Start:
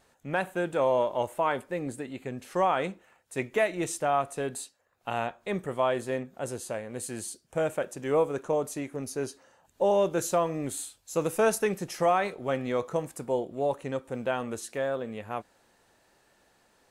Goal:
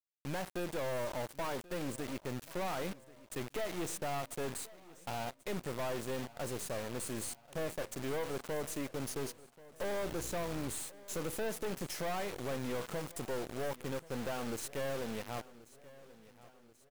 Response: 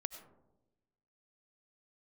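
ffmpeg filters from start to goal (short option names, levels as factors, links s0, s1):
-filter_complex "[0:a]bandreject=f=50:t=h:w=6,bandreject=f=100:t=h:w=6,acrossover=split=1300[s0][s1];[s1]alimiter=level_in=1.58:limit=0.0631:level=0:latency=1:release=141,volume=0.631[s2];[s0][s2]amix=inputs=2:normalize=0,acompressor=threshold=0.0316:ratio=2,asettb=1/sr,asplit=3[s3][s4][s5];[s3]atrim=end=9.984[s6];[s4]atrim=start=9.98:end=10.72,asetpts=PTS-STARTPTS,afade=t=in:d=0.004:c=qsin,afade=t=out:st=0.736:d=0.004:c=qsin,aeval=exprs='val(0)+0.00562*(sin(2*PI*60*n/s)+sin(2*PI*2*60*n/s)/2+sin(2*PI*3*60*n/s)/3+sin(2*PI*4*60*n/s)/4+sin(2*PI*5*60*n/s)/5)':c=same[s7];[s5]atrim=start=10.716[s8];[s6][s7]acrossfade=d=0.004:c1=hsin:c2=qsin[s9];[s9][s8]acrossfade=d=0.004:c1=qsin:c2=hsin,acrusher=bits=6:mix=0:aa=0.000001,aeval=exprs='(tanh(63.1*val(0)+0.7)-tanh(0.7))/63.1':c=same,asplit=2[s10][s11];[s11]aecho=0:1:1084|2168|3252|4336:0.106|0.0551|0.0286|0.0149[s12];[s10][s12]amix=inputs=2:normalize=0,volume=1.19"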